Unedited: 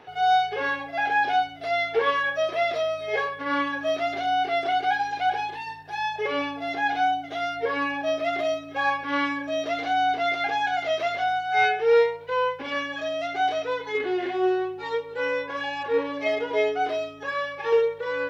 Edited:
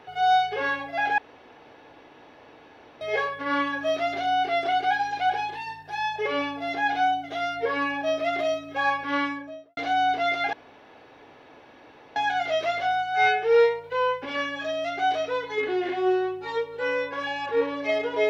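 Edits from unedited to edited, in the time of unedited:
1.18–3.01 room tone
9.11–9.77 studio fade out
10.53 insert room tone 1.63 s

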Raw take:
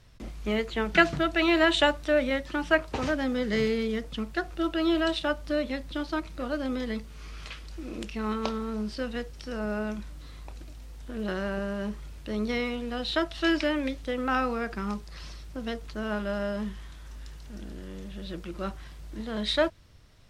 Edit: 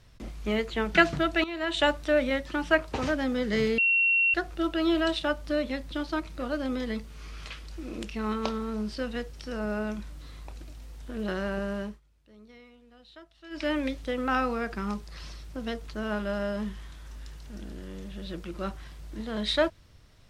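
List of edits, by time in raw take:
1.44–1.89 fade in quadratic, from -14 dB
3.78–4.34 bleep 2730 Hz -20 dBFS
11.78–13.72 dip -23 dB, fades 0.22 s

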